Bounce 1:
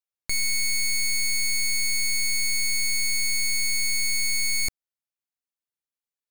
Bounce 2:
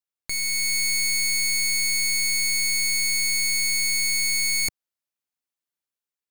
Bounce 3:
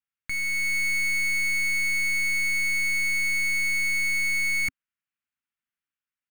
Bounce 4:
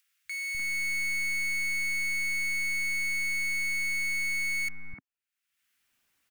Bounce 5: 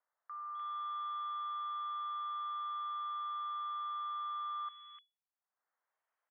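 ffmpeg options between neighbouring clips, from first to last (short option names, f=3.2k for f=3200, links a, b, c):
-af "lowshelf=f=64:g=-7,dynaudnorm=f=150:g=7:m=4dB,volume=-1.5dB"
-af "firequalizer=gain_entry='entry(260,0);entry(410,-15);entry(1400,4);entry(2800,2);entry(4100,-11)':delay=0.05:min_phase=1"
-filter_complex "[0:a]acompressor=mode=upward:threshold=-49dB:ratio=2.5,acrossover=split=160|1400[a][b][c];[a]adelay=250[d];[b]adelay=300[e];[d][e][c]amix=inputs=3:normalize=0,volume=-5dB"
-filter_complex "[0:a]lowpass=f=2.9k:t=q:w=0.5098,lowpass=f=2.9k:t=q:w=0.6013,lowpass=f=2.9k:t=q:w=0.9,lowpass=f=2.9k:t=q:w=2.563,afreqshift=-3400,highpass=330,acrossover=split=480 2000:gain=0.224 1 0.1[a][b][c];[a][b][c]amix=inputs=3:normalize=0,volume=-7.5dB"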